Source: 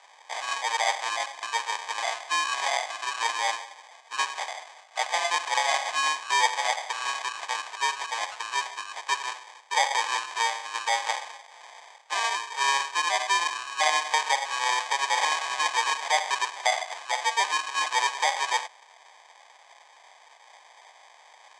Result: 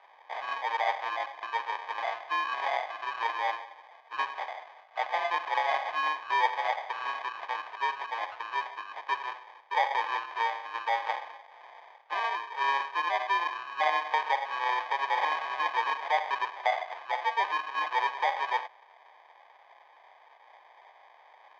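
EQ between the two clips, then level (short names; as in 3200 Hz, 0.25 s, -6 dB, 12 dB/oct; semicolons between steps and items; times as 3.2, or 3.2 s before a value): LPF 2300 Hz 6 dB/oct; air absorption 240 m; 0.0 dB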